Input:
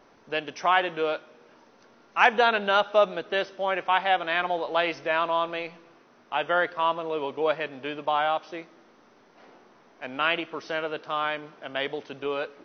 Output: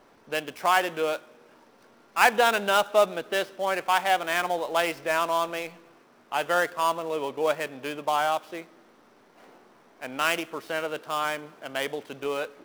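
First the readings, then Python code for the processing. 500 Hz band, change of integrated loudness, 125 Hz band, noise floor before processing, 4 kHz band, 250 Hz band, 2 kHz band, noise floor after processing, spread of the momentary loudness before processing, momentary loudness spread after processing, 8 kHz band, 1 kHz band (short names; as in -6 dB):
0.0 dB, 0.0 dB, 0.0 dB, -58 dBFS, 0.0 dB, 0.0 dB, -0.5 dB, -58 dBFS, 11 LU, 11 LU, n/a, 0.0 dB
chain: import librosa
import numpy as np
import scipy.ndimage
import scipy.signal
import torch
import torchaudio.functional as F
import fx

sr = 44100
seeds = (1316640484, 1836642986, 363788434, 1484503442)

y = fx.dead_time(x, sr, dead_ms=0.075)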